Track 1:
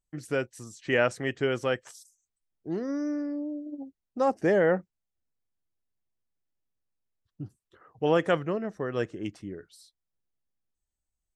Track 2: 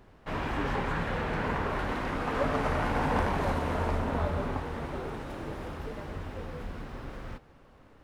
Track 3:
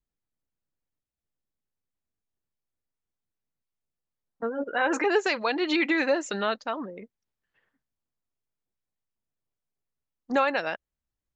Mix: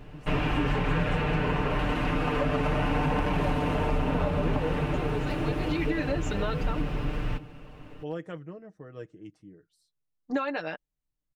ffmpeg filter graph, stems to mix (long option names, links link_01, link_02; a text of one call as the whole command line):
ffmpeg -i stem1.wav -i stem2.wav -i stem3.wav -filter_complex "[0:a]aecho=1:1:6.4:0.53,asoftclip=type=hard:threshold=-10.5dB,volume=-18dB,asplit=2[link_01][link_02];[1:a]equalizer=frequency=2700:width_type=o:width=0.4:gain=10.5,volume=3dB[link_03];[2:a]volume=-6.5dB[link_04];[link_02]apad=whole_len=500652[link_05];[link_04][link_05]sidechaincompress=threshold=-53dB:ratio=8:attack=16:release=1100[link_06];[link_03][link_06]amix=inputs=2:normalize=0,aecho=1:1:6.7:0.67,acompressor=threshold=-28dB:ratio=4,volume=0dB[link_07];[link_01][link_07]amix=inputs=2:normalize=0,lowshelf=frequency=400:gain=8" out.wav